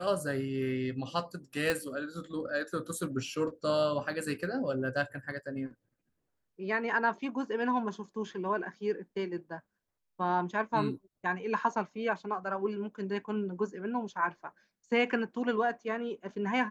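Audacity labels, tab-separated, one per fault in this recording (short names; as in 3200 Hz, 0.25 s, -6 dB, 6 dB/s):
1.700000	1.700000	pop -14 dBFS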